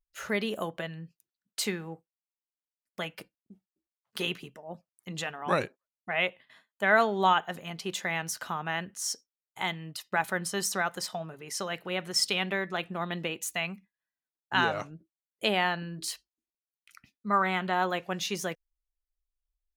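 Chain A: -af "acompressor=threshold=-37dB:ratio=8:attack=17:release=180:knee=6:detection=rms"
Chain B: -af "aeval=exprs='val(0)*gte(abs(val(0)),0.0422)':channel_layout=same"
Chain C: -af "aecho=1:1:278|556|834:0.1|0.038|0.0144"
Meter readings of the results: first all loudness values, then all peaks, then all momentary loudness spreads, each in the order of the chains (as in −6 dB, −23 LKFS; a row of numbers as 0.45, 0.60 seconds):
−41.5, −31.0, −30.5 LKFS; −20.0, −10.0, −10.0 dBFS; 12, 16, 18 LU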